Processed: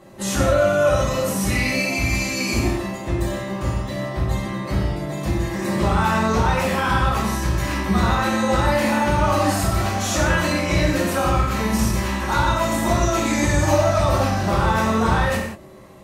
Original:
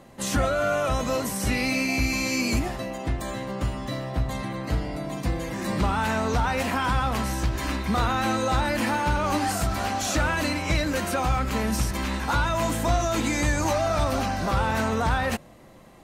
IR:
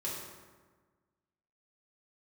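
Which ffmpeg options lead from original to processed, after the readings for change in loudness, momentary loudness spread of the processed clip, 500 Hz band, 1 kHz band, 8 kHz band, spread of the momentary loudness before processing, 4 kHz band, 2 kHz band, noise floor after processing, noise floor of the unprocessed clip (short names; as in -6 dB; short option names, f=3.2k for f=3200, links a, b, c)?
+5.0 dB, 7 LU, +6.5 dB, +4.5 dB, +4.0 dB, 6 LU, +3.5 dB, +4.5 dB, -31 dBFS, -49 dBFS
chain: -filter_complex "[1:a]atrim=start_sample=2205,afade=t=out:st=0.25:d=0.01,atrim=end_sample=11466[a];[0:a][a]afir=irnorm=-1:irlink=0,volume=3dB"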